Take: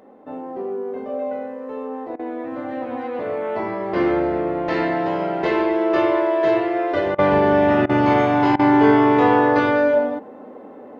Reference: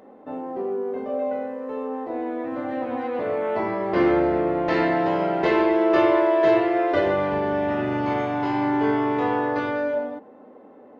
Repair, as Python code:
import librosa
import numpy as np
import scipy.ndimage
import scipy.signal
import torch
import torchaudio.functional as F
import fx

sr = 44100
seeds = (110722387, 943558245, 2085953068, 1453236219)

y = fx.fix_interpolate(x, sr, at_s=(2.16, 7.15, 7.86, 8.56), length_ms=32.0)
y = fx.gain(y, sr, db=fx.steps((0.0, 0.0), (7.19, -8.0)))